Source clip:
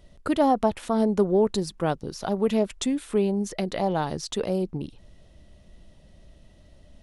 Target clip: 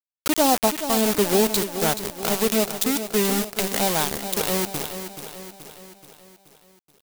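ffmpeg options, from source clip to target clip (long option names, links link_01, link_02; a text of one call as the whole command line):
ffmpeg -i in.wav -filter_complex "[0:a]lowpass=5000,asplit=2[link_01][link_02];[link_02]aecho=0:1:142:0.168[link_03];[link_01][link_03]amix=inputs=2:normalize=0,aeval=exprs='val(0)*gte(abs(val(0)),0.0501)':channel_layout=same,crystalizer=i=5:c=0,asplit=2[link_04][link_05];[link_05]aecho=0:1:428|856|1284|1712|2140|2568:0.316|0.168|0.0888|0.0471|0.025|0.0132[link_06];[link_04][link_06]amix=inputs=2:normalize=0" out.wav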